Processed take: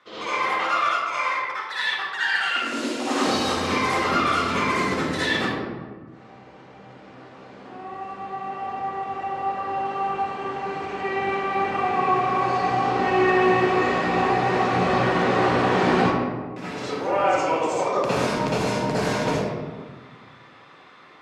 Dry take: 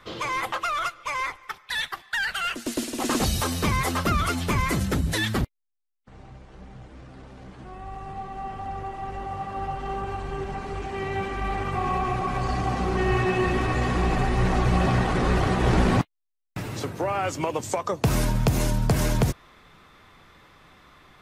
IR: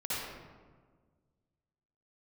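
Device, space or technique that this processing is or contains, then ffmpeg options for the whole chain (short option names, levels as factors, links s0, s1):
supermarket ceiling speaker: -filter_complex "[0:a]highpass=280,lowpass=6200[s0];[1:a]atrim=start_sample=2205[s1];[s0][s1]afir=irnorm=-1:irlink=0"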